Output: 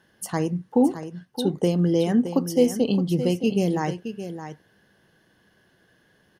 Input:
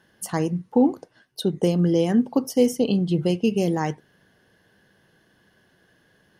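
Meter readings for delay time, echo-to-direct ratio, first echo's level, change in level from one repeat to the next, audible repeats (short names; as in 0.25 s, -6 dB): 0.618 s, -10.5 dB, -10.5 dB, no steady repeat, 1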